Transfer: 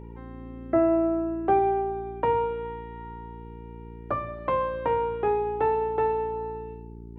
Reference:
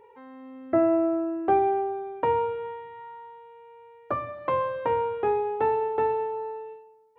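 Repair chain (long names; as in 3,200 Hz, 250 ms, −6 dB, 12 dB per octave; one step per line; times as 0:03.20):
hum removal 57.4 Hz, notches 7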